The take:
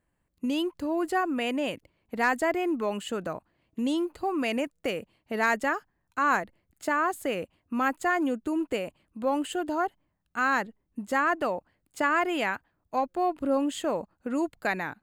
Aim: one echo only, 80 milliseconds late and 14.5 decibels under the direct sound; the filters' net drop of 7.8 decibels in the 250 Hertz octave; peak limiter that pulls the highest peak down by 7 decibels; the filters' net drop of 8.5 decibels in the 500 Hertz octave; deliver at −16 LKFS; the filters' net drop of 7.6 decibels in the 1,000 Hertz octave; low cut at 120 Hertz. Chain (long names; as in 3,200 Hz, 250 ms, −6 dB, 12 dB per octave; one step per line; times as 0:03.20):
high-pass filter 120 Hz
parametric band 250 Hz −6.5 dB
parametric band 500 Hz −7 dB
parametric band 1,000 Hz −7.5 dB
brickwall limiter −23 dBFS
single-tap delay 80 ms −14.5 dB
level +20 dB